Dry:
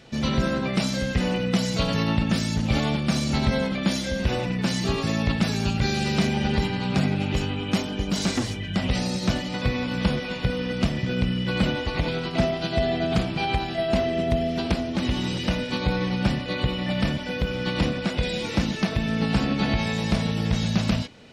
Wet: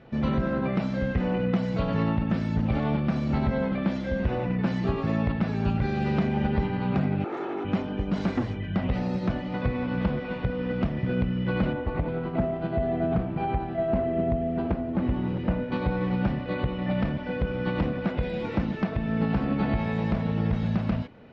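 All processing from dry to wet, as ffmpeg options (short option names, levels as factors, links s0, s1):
-filter_complex "[0:a]asettb=1/sr,asplit=3[s0][s1][s2];[s0]atrim=end=7.244[s3];[s1]atrim=start=7.24:end=7.65,asetpts=PTS-STARTPTS,afade=t=in:d=0.004:c=qsin,afade=t=out:st=0.406:d=0.004:c=qsin,aeval=exprs='0.0447*(abs(mod(val(0)/0.0447+3,4)-2)-1)':c=same,highpass=f=200:w=0.5412,highpass=f=200:w=1.3066,equalizer=f=340:t=q:w=4:g=9,equalizer=f=500:t=q:w=4:g=-5,equalizer=f=710:t=q:w=4:g=6,equalizer=f=1300:t=q:w=4:g=6,equalizer=f=2900:t=q:w=4:g=-8,equalizer=f=4900:t=q:w=4:g=-7,lowpass=f=7000:w=0.5412,lowpass=f=7000:w=1.3066,aecho=1:1:2.3:0.4,atrim=end_sample=18081[s4];[s2]atrim=start=7.646[s5];[s3][s4]acrossfade=d=0.004:c1=hsin:c2=qsin[s6];[s6][s5]acrossfade=d=0.004:c1=qsin:c2=hsin,asettb=1/sr,asplit=3[s7][s8][s9];[s7]atrim=end=11.734[s10];[s8]atrim=start=11.73:end=15.72,asetpts=PTS-STARTPTS,afade=t=in:d=0.004:c=qsin,afade=t=out:st=3.986:d=0.004:c=qsin,lowpass=f=1400:p=1,acrusher=bits=8:mode=log:mix=0:aa=0.000001[s11];[s9]atrim=start=15.716[s12];[s10][s11]acrossfade=d=0.004:c1=hsin:c2=qsin[s13];[s13][s12]acrossfade=d=0.004:c1=qsin:c2=hsin,lowpass=1600,alimiter=limit=0.178:level=0:latency=1:release=263"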